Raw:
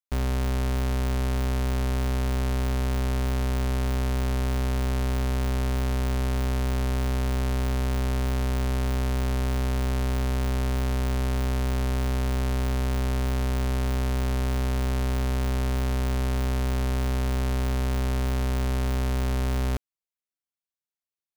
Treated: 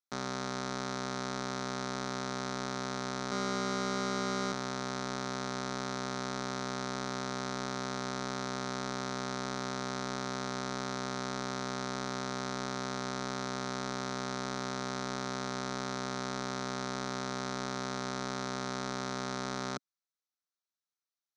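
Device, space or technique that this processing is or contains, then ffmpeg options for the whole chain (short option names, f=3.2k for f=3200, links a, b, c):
television speaker: -filter_complex "[0:a]asettb=1/sr,asplit=3[a][b][c];[a]atrim=end=3.314[d];[b]atrim=start=3.31:end=4.52,asetpts=PTS-STARTPTS,afade=t=in:d=0.004:c=qsin,afade=t=out:st=1.206:d=0.004:c=qsin,aecho=1:1:4.9:0.97,atrim=end_sample=53361[e];[c]atrim=start=4.516[f];[d][e]acrossfade=d=0.004:c1=hsin:c2=qsin[g];[g][f]acrossfade=d=0.004:c1=qsin:c2=hsin,highpass=f=170:w=0.5412,highpass=f=170:w=1.3066,equalizer=f=270:t=q:w=4:g=-4,equalizer=f=470:t=q:w=4:g=-4,equalizer=f=1.3k:t=q:w=4:g=8,equalizer=f=2.8k:t=q:w=4:g=-9,equalizer=f=4k:t=q:w=4:g=7,equalizer=f=5.9k:t=q:w=4:g=8,lowpass=f=7k:w=0.5412,lowpass=f=7k:w=1.3066,volume=-3.5dB"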